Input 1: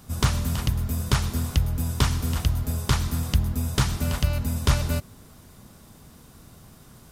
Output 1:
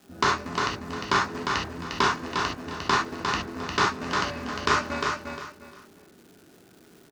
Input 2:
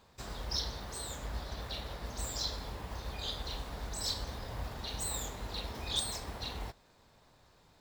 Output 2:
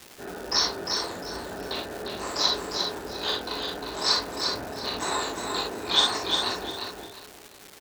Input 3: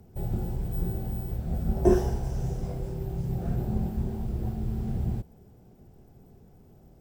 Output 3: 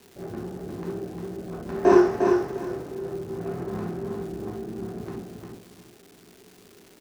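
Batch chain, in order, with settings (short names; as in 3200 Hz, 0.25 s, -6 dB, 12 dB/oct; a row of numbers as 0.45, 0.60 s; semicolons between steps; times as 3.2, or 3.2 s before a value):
Wiener smoothing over 41 samples; bell 780 Hz -3 dB 0.79 oct; in parallel at -8 dB: Schmitt trigger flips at -20 dBFS; on the sum: speaker cabinet 370–5500 Hz, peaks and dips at 540 Hz -4 dB, 1100 Hz +7 dB, 1600 Hz +4 dB, 3300 Hz -8 dB, 4900 Hz -3 dB; wow and flutter 49 cents; feedback echo 0.353 s, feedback 25%, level -5 dB; non-linear reverb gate 90 ms flat, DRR -2 dB; crackle 600/s -48 dBFS; match loudness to -27 LUFS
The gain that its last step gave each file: +3.0, +15.0, +7.0 dB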